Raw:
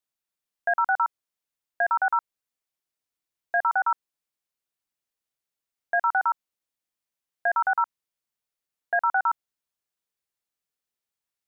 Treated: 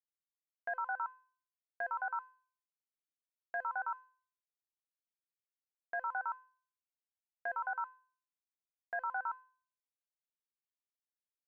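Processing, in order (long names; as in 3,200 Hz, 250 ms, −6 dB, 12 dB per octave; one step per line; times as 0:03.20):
noise gate with hold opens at −34 dBFS
tuned comb filter 510 Hz, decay 0.46 s, mix 90%
level +4.5 dB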